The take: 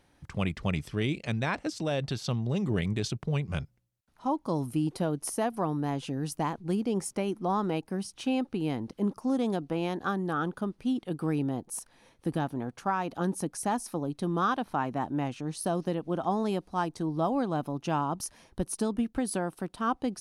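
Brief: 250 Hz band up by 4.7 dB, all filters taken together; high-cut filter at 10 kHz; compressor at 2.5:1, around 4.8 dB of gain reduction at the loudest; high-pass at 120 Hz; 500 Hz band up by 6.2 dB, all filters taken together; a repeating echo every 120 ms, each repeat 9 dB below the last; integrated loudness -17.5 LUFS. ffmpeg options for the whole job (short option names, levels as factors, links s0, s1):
-af "highpass=120,lowpass=10000,equalizer=f=250:t=o:g=4.5,equalizer=f=500:t=o:g=6.5,acompressor=threshold=0.0501:ratio=2.5,aecho=1:1:120|240|360|480:0.355|0.124|0.0435|0.0152,volume=4.47"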